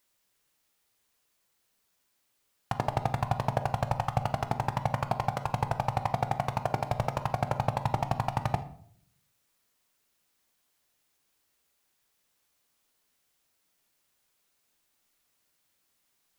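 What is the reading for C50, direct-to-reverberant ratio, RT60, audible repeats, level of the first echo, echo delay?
13.0 dB, 9.0 dB, 0.60 s, none, none, none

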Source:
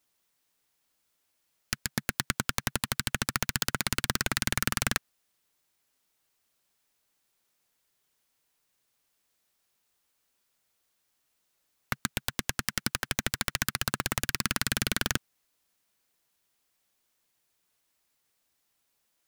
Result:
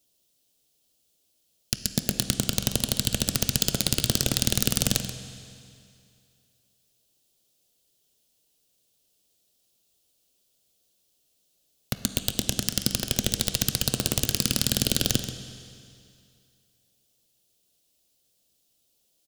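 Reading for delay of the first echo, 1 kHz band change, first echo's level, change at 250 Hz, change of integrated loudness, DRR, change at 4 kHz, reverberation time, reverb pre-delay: 0.133 s, -6.0 dB, -13.0 dB, +7.0 dB, +5.0 dB, 7.5 dB, +6.0 dB, 2.4 s, 14 ms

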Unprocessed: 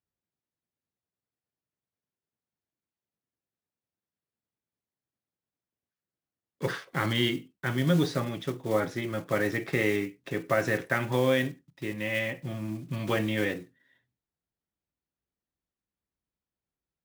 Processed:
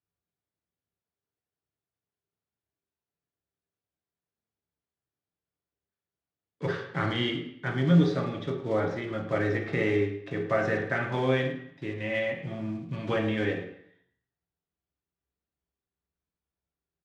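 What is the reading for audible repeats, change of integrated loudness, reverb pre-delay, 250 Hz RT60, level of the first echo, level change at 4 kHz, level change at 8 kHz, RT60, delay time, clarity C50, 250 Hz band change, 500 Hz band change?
1, +0.5 dB, 3 ms, 0.70 s, -14.5 dB, -2.5 dB, under -10 dB, 0.65 s, 0.106 s, 7.0 dB, +1.5 dB, +0.5 dB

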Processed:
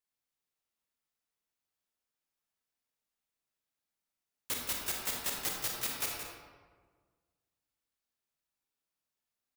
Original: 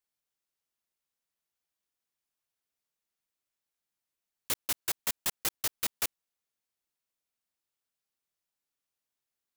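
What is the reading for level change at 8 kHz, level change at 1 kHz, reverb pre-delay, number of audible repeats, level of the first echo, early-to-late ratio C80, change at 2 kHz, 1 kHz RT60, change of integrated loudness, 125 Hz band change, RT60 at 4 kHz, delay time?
-2.5 dB, 0.0 dB, 31 ms, 1, -9.0 dB, 1.5 dB, -1.0 dB, 1.5 s, -2.5 dB, +0.5 dB, 0.85 s, 0.173 s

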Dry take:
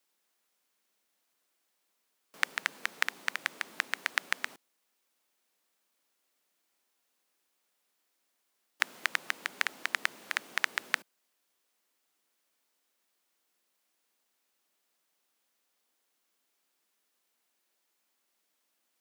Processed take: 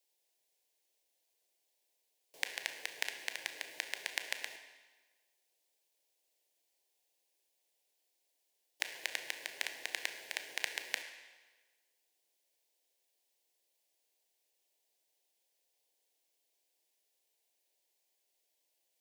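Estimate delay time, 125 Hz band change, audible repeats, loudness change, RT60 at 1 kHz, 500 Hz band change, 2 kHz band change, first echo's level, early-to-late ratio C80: none, n/a, none, -6.5 dB, 1.3 s, -2.0 dB, -8.0 dB, none, 10.0 dB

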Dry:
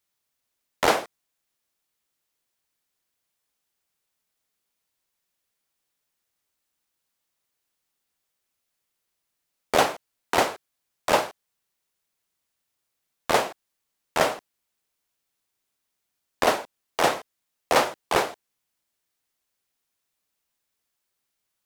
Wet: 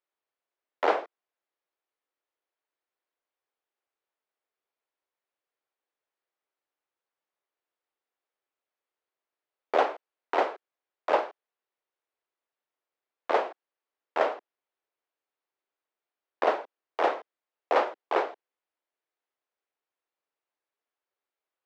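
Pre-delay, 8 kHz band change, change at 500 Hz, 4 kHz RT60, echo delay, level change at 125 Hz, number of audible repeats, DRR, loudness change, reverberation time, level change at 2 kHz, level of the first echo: none, under -20 dB, -2.5 dB, none, none, under -25 dB, none, none, -4.0 dB, none, -7.0 dB, none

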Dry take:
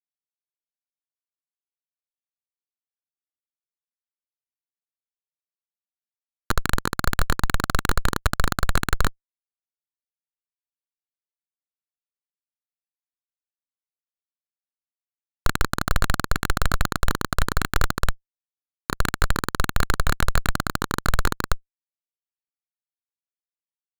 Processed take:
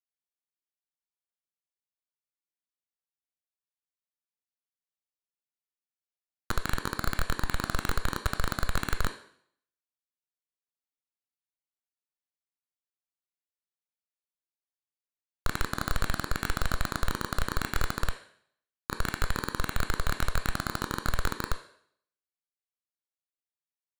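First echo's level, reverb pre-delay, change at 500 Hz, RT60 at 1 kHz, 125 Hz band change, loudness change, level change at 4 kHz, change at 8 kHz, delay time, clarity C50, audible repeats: none, 7 ms, -7.0 dB, 0.65 s, -7.5 dB, -7.0 dB, -6.5 dB, -7.0 dB, none, 10.0 dB, none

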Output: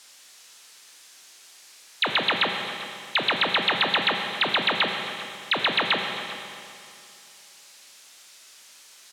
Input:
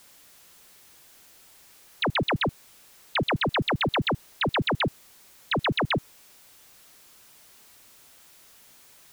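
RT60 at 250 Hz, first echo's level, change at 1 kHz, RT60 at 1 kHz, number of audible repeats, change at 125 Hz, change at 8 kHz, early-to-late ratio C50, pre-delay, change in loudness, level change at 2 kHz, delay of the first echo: 2.5 s, -17.0 dB, +2.5 dB, 2.5 s, 1, -12.5 dB, +6.0 dB, 4.0 dB, 16 ms, +3.0 dB, +5.0 dB, 0.395 s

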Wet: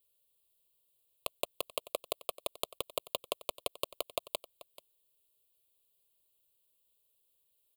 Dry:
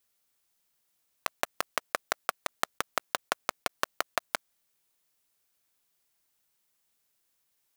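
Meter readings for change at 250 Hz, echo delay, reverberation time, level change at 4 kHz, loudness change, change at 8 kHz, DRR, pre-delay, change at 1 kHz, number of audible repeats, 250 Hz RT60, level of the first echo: -5.5 dB, 0.435 s, none, -2.0 dB, -5.5 dB, -5.0 dB, none, none, -10.5 dB, 1, none, -18.0 dB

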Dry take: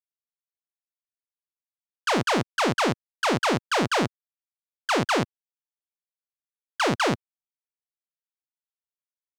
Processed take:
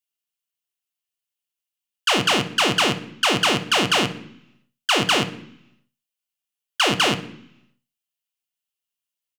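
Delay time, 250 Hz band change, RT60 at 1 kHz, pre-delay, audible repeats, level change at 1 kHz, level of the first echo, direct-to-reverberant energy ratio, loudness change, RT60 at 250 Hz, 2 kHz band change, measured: 62 ms, +1.5 dB, 0.70 s, 3 ms, 1, +2.0 dB, -17.5 dB, 5.5 dB, +5.0 dB, 0.90 s, +5.5 dB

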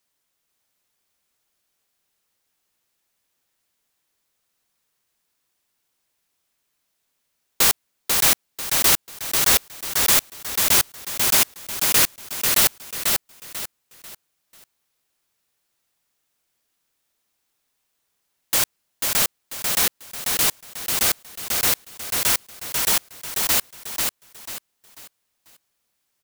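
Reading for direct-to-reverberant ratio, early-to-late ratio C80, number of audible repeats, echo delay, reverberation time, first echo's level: none, none, 4, 0.492 s, none, -4.0 dB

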